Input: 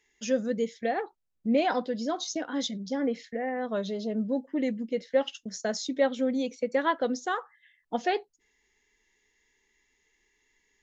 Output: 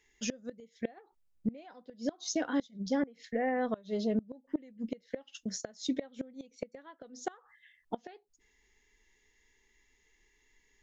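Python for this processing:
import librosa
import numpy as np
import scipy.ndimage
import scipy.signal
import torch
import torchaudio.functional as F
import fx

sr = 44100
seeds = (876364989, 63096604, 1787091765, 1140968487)

y = fx.low_shelf(x, sr, hz=84.0, db=10.0)
y = fx.gate_flip(y, sr, shuts_db=-21.0, range_db=-26)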